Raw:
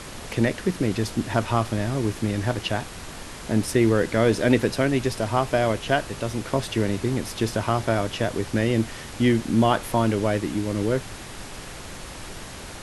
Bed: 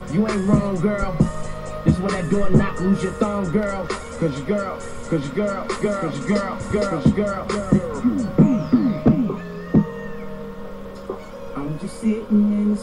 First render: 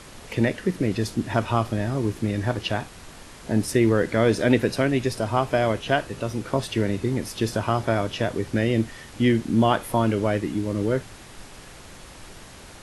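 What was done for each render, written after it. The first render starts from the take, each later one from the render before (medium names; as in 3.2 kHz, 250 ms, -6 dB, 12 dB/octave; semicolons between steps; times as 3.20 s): noise print and reduce 6 dB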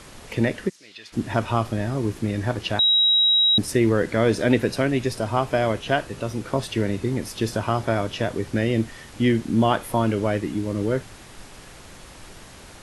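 0.68–1.12 s: band-pass filter 7.8 kHz -> 2.1 kHz, Q 2; 2.79–3.58 s: bleep 3.84 kHz -14.5 dBFS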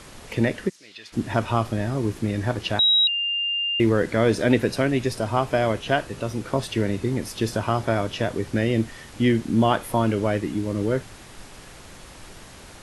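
3.07–3.80 s: bleep 2.8 kHz -22 dBFS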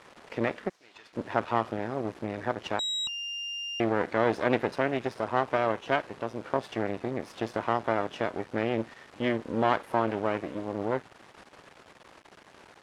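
half-wave rectifier; band-pass filter 880 Hz, Q 0.5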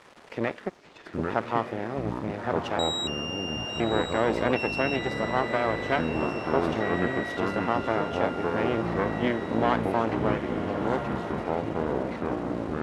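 echo that smears into a reverb 1220 ms, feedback 42%, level -7.5 dB; ever faster or slower copies 612 ms, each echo -6 st, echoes 2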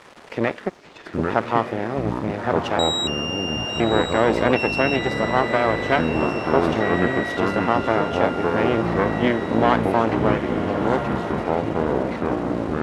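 trim +6.5 dB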